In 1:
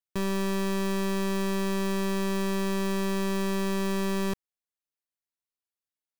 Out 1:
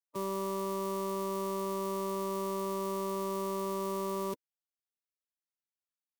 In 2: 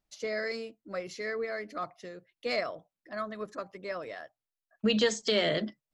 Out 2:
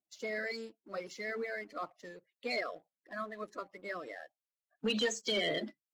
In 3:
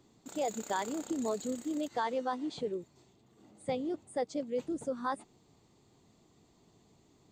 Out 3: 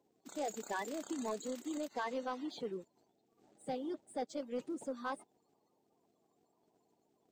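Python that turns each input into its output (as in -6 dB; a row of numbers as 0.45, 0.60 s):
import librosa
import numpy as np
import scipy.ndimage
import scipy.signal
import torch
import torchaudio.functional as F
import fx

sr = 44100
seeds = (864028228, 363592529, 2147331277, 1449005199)

y = fx.spec_quant(x, sr, step_db=30)
y = scipy.signal.sosfilt(scipy.signal.butter(2, 220.0, 'highpass', fs=sr, output='sos'), y)
y = fx.leveller(y, sr, passes=1)
y = y * 10.0 ** (-7.0 / 20.0)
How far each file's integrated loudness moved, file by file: -6.0, -5.0, -5.5 LU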